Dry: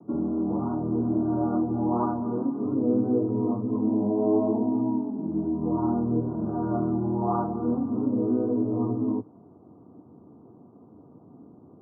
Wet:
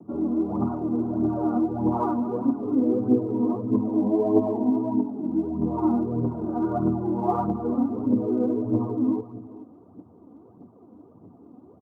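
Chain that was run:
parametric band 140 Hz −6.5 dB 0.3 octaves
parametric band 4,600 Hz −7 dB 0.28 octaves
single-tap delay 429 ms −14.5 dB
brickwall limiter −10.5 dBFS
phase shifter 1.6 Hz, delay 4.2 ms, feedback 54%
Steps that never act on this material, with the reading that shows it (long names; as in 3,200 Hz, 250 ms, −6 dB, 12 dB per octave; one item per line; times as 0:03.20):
parametric band 4,600 Hz: nothing at its input above 1,200 Hz
brickwall limiter −10.5 dBFS: peak of its input −13.0 dBFS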